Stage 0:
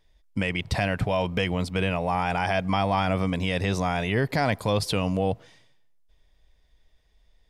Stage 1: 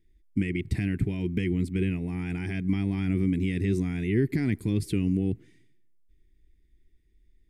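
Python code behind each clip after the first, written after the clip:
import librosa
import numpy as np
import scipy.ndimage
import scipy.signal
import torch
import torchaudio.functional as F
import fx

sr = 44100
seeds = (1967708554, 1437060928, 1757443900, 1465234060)

y = fx.curve_eq(x, sr, hz=(170.0, 260.0, 370.0, 540.0, 1100.0, 2100.0, 3000.0, 5600.0, 8100.0), db=(0, 4, 7, -26, -25, -5, -14, -15, -6))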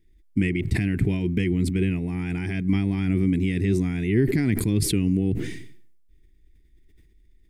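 y = fx.sustainer(x, sr, db_per_s=48.0)
y = F.gain(torch.from_numpy(y), 3.5).numpy()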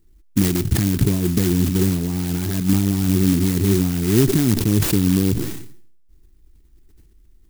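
y = fx.clock_jitter(x, sr, seeds[0], jitter_ms=0.14)
y = F.gain(torch.from_numpy(y), 5.0).numpy()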